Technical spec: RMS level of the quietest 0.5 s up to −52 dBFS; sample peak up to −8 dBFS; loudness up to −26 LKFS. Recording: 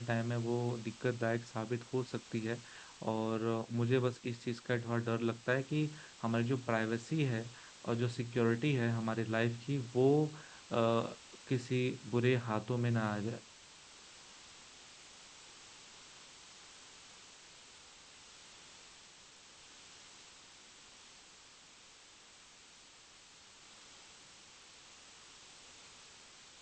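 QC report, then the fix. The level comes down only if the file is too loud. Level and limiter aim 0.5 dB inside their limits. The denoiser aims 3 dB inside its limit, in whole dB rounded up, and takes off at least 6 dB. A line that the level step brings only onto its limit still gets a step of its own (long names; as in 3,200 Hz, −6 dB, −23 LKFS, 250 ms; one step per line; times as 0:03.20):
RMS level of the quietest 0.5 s −59 dBFS: in spec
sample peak −16.5 dBFS: in spec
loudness −36.0 LKFS: in spec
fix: no processing needed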